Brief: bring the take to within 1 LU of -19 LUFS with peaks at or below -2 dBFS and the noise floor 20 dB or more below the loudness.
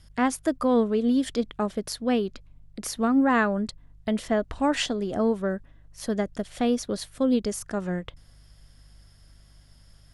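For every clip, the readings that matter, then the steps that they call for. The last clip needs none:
hum 50 Hz; harmonics up to 150 Hz; hum level -52 dBFS; loudness -26.5 LUFS; peak -11.0 dBFS; loudness target -19.0 LUFS
-> de-hum 50 Hz, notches 3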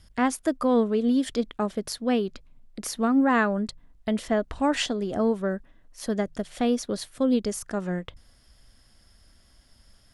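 hum none; loudness -26.5 LUFS; peak -11.5 dBFS; loudness target -19.0 LUFS
-> gain +7.5 dB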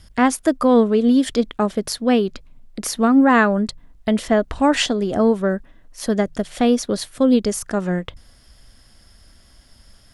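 loudness -19.0 LUFS; peak -4.0 dBFS; noise floor -51 dBFS

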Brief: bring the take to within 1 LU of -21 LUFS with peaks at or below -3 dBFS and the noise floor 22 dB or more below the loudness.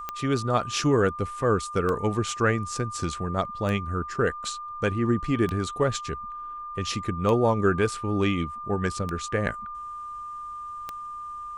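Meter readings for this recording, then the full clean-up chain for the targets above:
clicks 7; steady tone 1200 Hz; tone level -34 dBFS; loudness -27.0 LUFS; peak -9.5 dBFS; loudness target -21.0 LUFS
-> de-click; notch 1200 Hz, Q 30; gain +6 dB

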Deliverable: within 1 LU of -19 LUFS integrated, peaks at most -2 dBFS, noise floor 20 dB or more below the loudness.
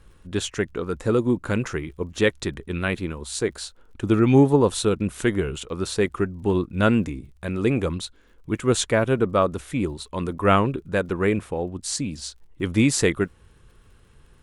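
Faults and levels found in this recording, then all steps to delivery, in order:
ticks 46/s; loudness -23.5 LUFS; peak -4.0 dBFS; loudness target -19.0 LUFS
-> de-click; gain +4.5 dB; limiter -2 dBFS

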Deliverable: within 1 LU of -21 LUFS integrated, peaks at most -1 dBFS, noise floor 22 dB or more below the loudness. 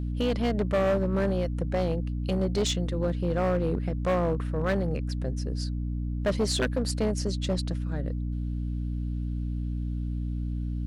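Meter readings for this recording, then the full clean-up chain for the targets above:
clipped 2.3%; flat tops at -20.0 dBFS; hum 60 Hz; harmonics up to 300 Hz; hum level -28 dBFS; loudness -29.0 LUFS; peak -20.0 dBFS; loudness target -21.0 LUFS
-> clip repair -20 dBFS; notches 60/120/180/240/300 Hz; gain +8 dB

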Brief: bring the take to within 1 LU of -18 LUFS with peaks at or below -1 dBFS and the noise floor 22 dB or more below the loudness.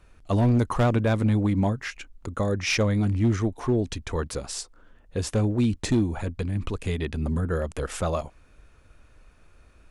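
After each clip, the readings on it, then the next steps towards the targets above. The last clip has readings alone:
clipped 0.9%; flat tops at -16.0 dBFS; loudness -26.0 LUFS; peak -16.0 dBFS; loudness target -18.0 LUFS
-> clip repair -16 dBFS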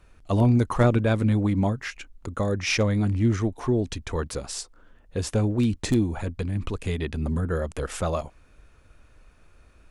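clipped 0.0%; loudness -25.5 LUFS; peak -7.5 dBFS; loudness target -18.0 LUFS
-> gain +7.5 dB; limiter -1 dBFS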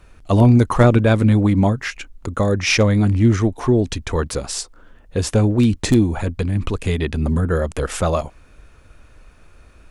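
loudness -18.0 LUFS; peak -1.0 dBFS; noise floor -49 dBFS

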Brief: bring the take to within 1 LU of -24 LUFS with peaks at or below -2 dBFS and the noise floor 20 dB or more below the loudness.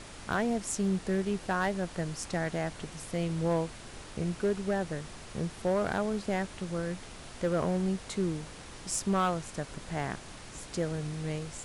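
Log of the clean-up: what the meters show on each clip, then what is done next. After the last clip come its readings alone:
clipped 1.0%; flat tops at -22.0 dBFS; noise floor -47 dBFS; noise floor target -53 dBFS; loudness -33.0 LUFS; peak -22.0 dBFS; loudness target -24.0 LUFS
-> clip repair -22 dBFS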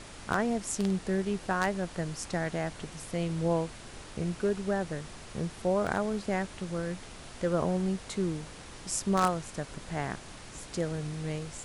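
clipped 0.0%; noise floor -47 dBFS; noise floor target -53 dBFS
-> noise print and reduce 6 dB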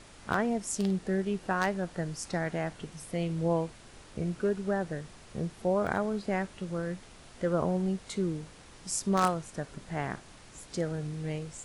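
noise floor -53 dBFS; loudness -32.5 LUFS; peak -13.0 dBFS; loudness target -24.0 LUFS
-> gain +8.5 dB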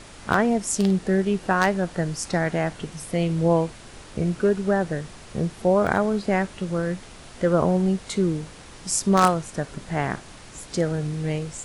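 loudness -24.0 LUFS; peak -4.5 dBFS; noise floor -44 dBFS

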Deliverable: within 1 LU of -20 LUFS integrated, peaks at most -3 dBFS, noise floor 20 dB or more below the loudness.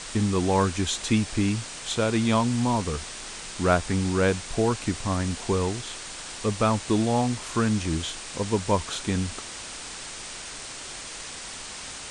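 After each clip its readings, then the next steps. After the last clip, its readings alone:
noise floor -39 dBFS; noise floor target -47 dBFS; loudness -27.0 LUFS; peak -7.0 dBFS; loudness target -20.0 LUFS
-> denoiser 8 dB, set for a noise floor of -39 dBFS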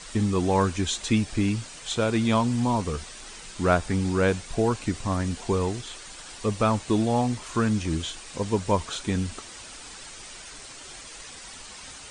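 noise floor -43 dBFS; noise floor target -46 dBFS
-> denoiser 6 dB, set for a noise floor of -43 dBFS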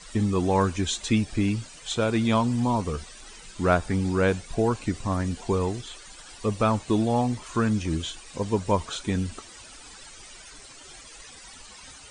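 noise floor -47 dBFS; loudness -26.0 LUFS; peak -7.5 dBFS; loudness target -20.0 LUFS
-> gain +6 dB; limiter -3 dBFS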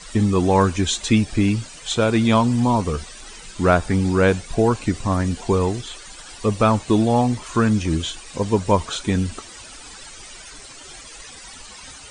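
loudness -20.0 LUFS; peak -3.0 dBFS; noise floor -41 dBFS

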